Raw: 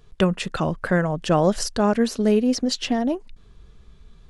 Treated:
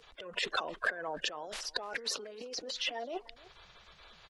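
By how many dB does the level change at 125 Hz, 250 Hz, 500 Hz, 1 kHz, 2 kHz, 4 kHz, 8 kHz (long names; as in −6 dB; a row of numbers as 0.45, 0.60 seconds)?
−35.5, −30.5, −19.0, −13.0, −5.0, −5.0, −10.5 decibels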